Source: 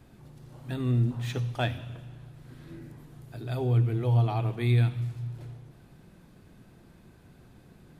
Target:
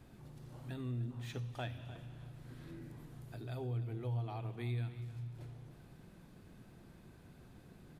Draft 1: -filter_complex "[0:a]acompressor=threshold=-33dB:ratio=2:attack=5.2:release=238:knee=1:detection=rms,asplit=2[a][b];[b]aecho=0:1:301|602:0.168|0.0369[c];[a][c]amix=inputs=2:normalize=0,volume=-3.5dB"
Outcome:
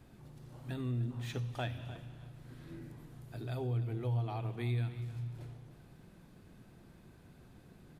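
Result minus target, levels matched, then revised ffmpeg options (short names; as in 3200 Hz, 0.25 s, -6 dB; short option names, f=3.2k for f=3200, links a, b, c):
compressor: peak gain reduction -4 dB
-filter_complex "[0:a]acompressor=threshold=-41dB:ratio=2:attack=5.2:release=238:knee=1:detection=rms,asplit=2[a][b];[b]aecho=0:1:301|602:0.168|0.0369[c];[a][c]amix=inputs=2:normalize=0,volume=-3.5dB"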